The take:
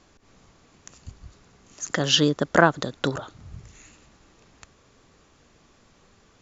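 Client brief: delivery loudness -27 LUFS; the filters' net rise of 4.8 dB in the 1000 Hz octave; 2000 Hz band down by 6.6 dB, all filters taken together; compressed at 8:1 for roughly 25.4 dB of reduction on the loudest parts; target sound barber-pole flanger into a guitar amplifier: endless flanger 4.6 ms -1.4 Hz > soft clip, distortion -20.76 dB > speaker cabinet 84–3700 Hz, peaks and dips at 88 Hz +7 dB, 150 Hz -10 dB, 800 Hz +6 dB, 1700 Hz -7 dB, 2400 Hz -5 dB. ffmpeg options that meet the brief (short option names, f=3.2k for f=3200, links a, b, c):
-filter_complex "[0:a]equalizer=f=1k:t=o:g=4.5,equalizer=f=2k:t=o:g=-6,acompressor=threshold=-37dB:ratio=8,asplit=2[a][b];[b]adelay=4.6,afreqshift=-1.4[c];[a][c]amix=inputs=2:normalize=1,asoftclip=threshold=-29.5dB,highpass=84,equalizer=f=88:t=q:w=4:g=7,equalizer=f=150:t=q:w=4:g=-10,equalizer=f=800:t=q:w=4:g=6,equalizer=f=1.7k:t=q:w=4:g=-7,equalizer=f=2.4k:t=q:w=4:g=-5,lowpass=f=3.7k:w=0.5412,lowpass=f=3.7k:w=1.3066,volume=23.5dB"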